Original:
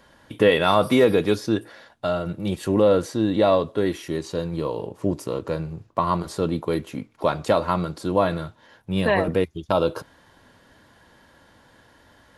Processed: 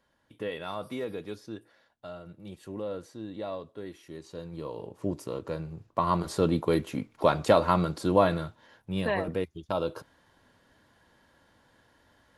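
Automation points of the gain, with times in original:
3.93 s -18 dB
5.03 s -7.5 dB
5.69 s -7.5 dB
6.38 s -1 dB
8.12 s -1 dB
9.22 s -9 dB

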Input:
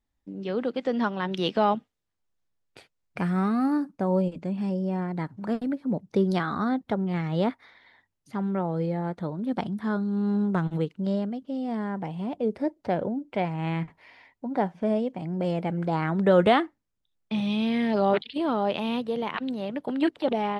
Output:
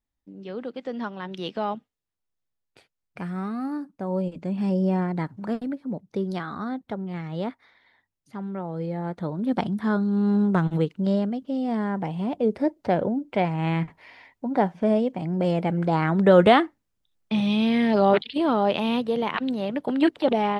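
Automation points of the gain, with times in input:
3.95 s -5.5 dB
4.84 s +6 dB
6.04 s -4.5 dB
8.62 s -4.5 dB
9.47 s +4 dB

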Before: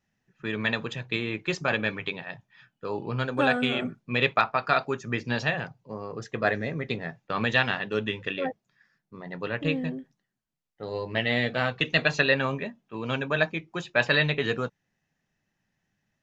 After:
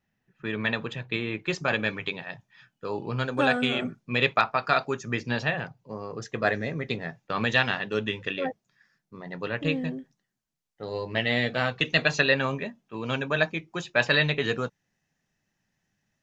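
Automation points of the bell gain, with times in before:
bell 6200 Hz 0.95 oct
1.28 s -6 dB
1.8 s +5 dB
5.2 s +5 dB
5.47 s -6.5 dB
5.97 s +4.5 dB

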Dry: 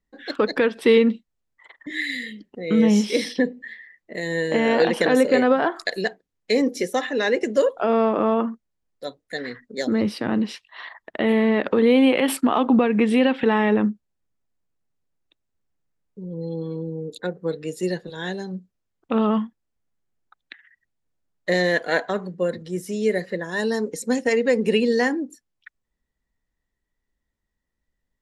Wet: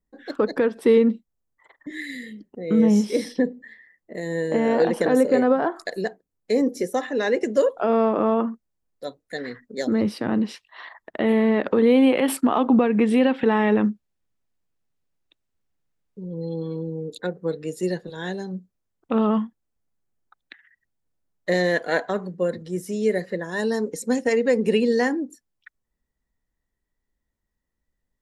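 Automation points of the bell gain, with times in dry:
bell 3000 Hz 1.8 oct
6.79 s -11.5 dB
7.38 s -4.5 dB
13.5 s -4.5 dB
13.9 s +2 dB
16.98 s +2 dB
17.52 s -4 dB

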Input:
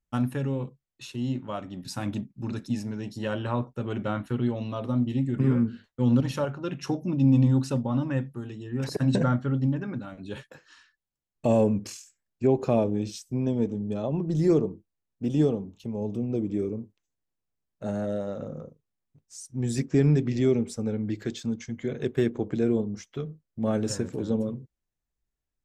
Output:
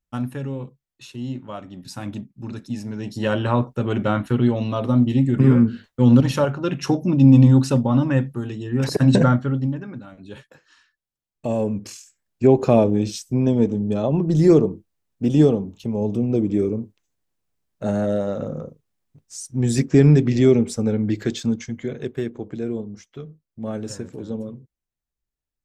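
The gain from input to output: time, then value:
2.71 s 0 dB
3.27 s +8.5 dB
9.23 s +8.5 dB
9.89 s -1.5 dB
11.57 s -1.5 dB
12.48 s +8 dB
21.49 s +8 dB
22.25 s -2.5 dB

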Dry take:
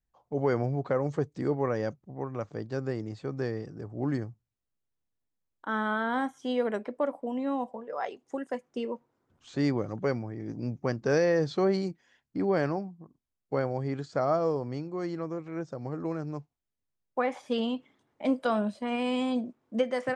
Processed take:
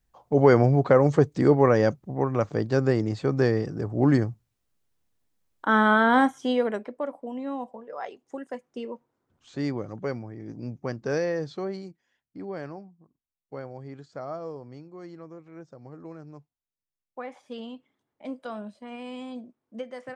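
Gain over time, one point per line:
6.24 s +10 dB
6.95 s -2 dB
11.2 s -2 dB
11.88 s -9 dB

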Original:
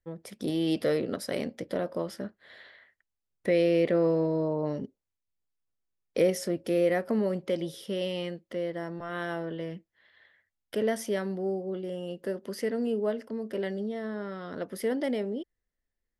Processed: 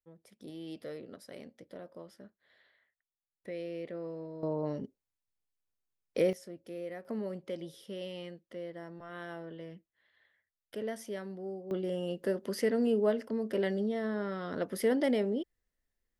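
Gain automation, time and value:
-16 dB
from 4.43 s -4 dB
from 6.33 s -16 dB
from 7.05 s -9.5 dB
from 11.71 s +1 dB

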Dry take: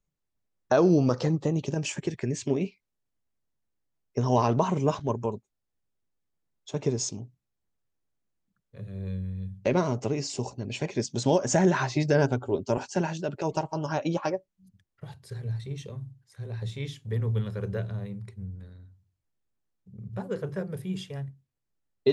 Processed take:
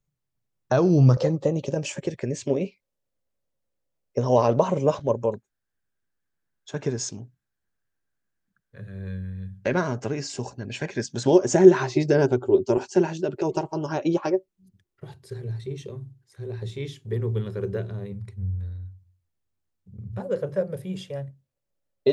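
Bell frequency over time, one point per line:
bell +14 dB 0.35 oct
130 Hz
from 1.17 s 540 Hz
from 5.34 s 1600 Hz
from 11.27 s 370 Hz
from 18.12 s 88 Hz
from 20.2 s 560 Hz

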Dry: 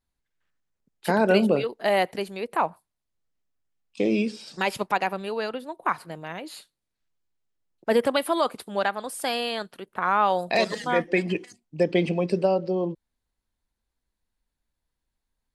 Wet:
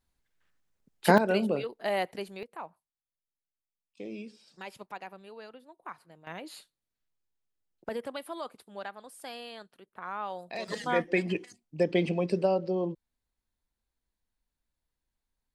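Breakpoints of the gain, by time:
+3 dB
from 1.18 s -7.5 dB
from 2.43 s -17.5 dB
from 6.27 s -5.5 dB
from 7.89 s -15 dB
from 10.68 s -4 dB

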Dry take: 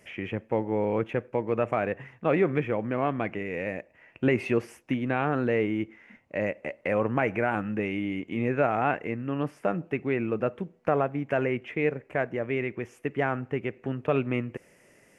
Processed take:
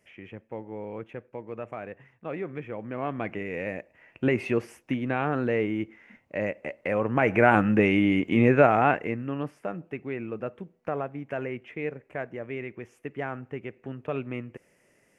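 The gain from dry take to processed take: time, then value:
2.52 s -10.5 dB
3.36 s -0.5 dB
7.06 s -0.5 dB
7.48 s +8.5 dB
8.38 s +8.5 dB
9.08 s +2 dB
9.67 s -6 dB

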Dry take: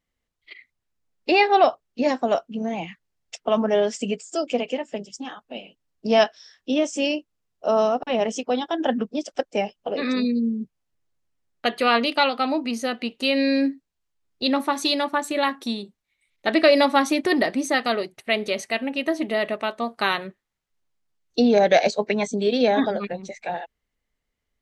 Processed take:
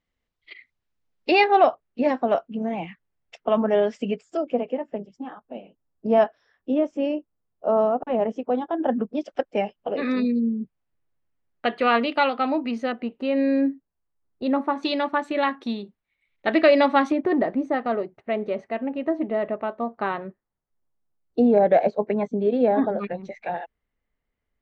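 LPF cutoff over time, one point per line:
4900 Hz
from 1.44 s 2300 Hz
from 4.37 s 1200 Hz
from 9.13 s 2400 Hz
from 12.92 s 1300 Hz
from 14.83 s 2600 Hz
from 17.12 s 1100 Hz
from 22.99 s 2300 Hz

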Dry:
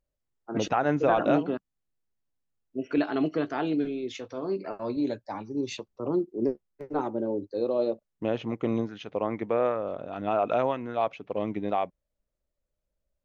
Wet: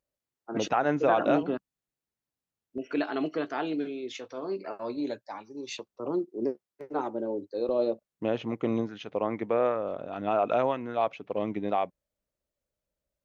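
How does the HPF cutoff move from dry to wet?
HPF 6 dB/oct
200 Hz
from 1.43 s 90 Hz
from 2.78 s 380 Hz
from 5.21 s 900 Hz
from 5.79 s 330 Hz
from 7.69 s 100 Hz

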